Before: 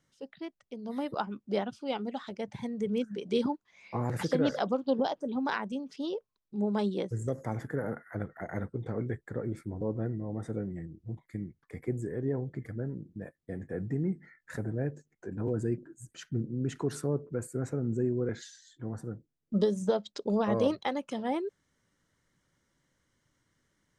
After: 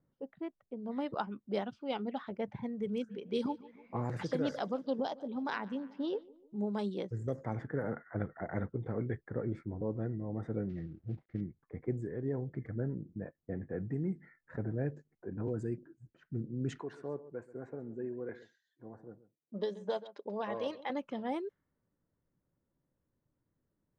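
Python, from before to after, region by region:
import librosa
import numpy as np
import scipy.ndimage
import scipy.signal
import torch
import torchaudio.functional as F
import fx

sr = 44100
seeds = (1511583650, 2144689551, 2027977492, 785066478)

y = fx.chain(x, sr, fx.hum_notches(base_hz=50, count=2),
    fx.echo_feedback(ms=149, feedback_pct=58, wet_db=-22.0), at=(2.94, 6.57))
y = fx.chain(y, sr, fx.cvsd(bps=32000),
    fx.peak_eq(hz=980.0, db=-13.0, octaves=0.48), at=(10.69, 11.41))
y = fx.chain(y, sr, fx.highpass(hz=950.0, slope=6),
    fx.notch(hz=1300.0, q=6.1),
    fx.echo_single(ms=134, db=-16.0), at=(16.8, 20.9))
y = fx.env_lowpass(y, sr, base_hz=730.0, full_db=-24.5)
y = fx.rider(y, sr, range_db=3, speed_s=0.5)
y = y * 10.0 ** (-3.0 / 20.0)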